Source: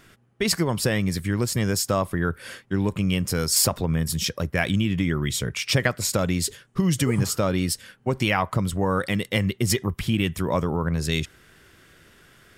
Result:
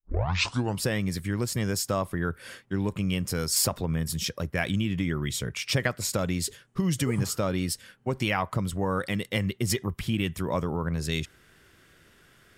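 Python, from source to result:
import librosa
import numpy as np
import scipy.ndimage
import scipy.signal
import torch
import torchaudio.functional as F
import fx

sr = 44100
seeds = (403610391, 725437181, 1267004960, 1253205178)

y = fx.tape_start_head(x, sr, length_s=0.8)
y = y * 10.0 ** (-4.5 / 20.0)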